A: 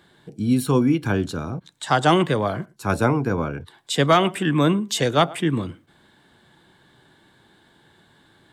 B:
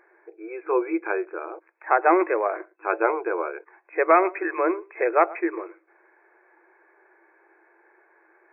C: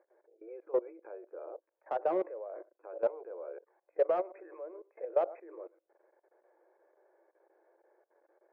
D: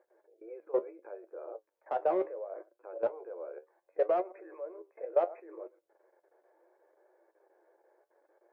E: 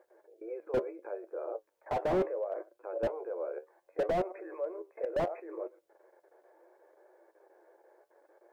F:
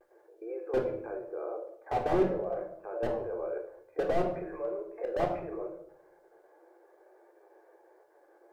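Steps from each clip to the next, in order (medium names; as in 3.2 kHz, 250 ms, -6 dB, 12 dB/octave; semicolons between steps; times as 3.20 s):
FFT band-pass 320–2600 Hz
level held to a coarse grid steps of 20 dB; overload inside the chain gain 19.5 dB; band-pass filter 550 Hz, Q 5.5; trim +4 dB
flange 0.7 Hz, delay 7.7 ms, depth 5.8 ms, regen +56%; trim +5 dB
slew-rate limiter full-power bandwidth 14 Hz; trim +5.5 dB
vibrato 0.43 Hz 31 cents; on a send at -1.5 dB: reverberation RT60 0.65 s, pre-delay 3 ms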